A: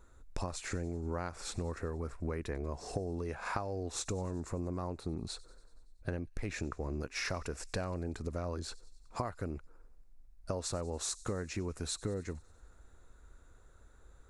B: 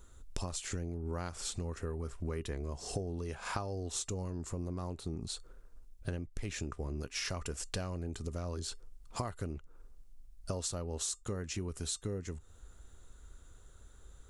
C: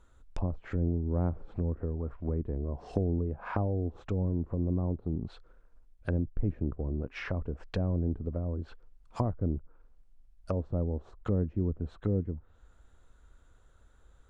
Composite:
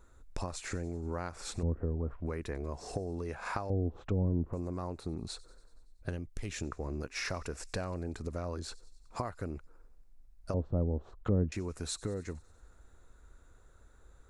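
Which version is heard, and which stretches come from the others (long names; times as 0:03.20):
A
0:01.63–0:02.26: punch in from C
0:03.70–0:04.53: punch in from C
0:06.09–0:06.62: punch in from B
0:10.54–0:11.52: punch in from C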